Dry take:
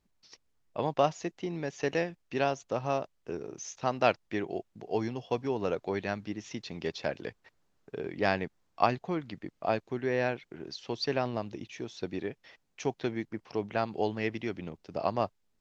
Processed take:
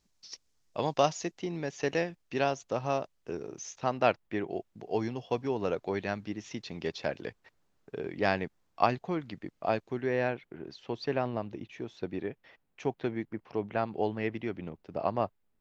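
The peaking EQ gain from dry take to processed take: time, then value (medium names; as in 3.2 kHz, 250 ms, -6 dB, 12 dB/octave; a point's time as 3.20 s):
peaking EQ 5.8 kHz 1.4 oct
1.00 s +10.5 dB
1.53 s +1.5 dB
3.47 s +1.5 dB
4.35 s -9.5 dB
4.68 s -1 dB
9.89 s -1 dB
10.51 s -11.5 dB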